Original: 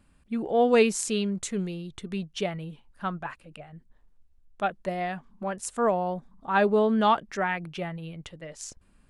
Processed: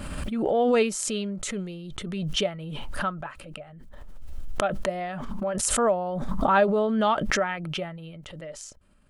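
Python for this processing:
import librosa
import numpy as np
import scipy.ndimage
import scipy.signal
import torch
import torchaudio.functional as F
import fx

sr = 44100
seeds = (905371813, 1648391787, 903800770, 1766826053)

y = fx.small_body(x, sr, hz=(590.0, 1300.0, 3100.0), ring_ms=45, db=9)
y = fx.pre_swell(y, sr, db_per_s=26.0)
y = y * librosa.db_to_amplitude(-3.0)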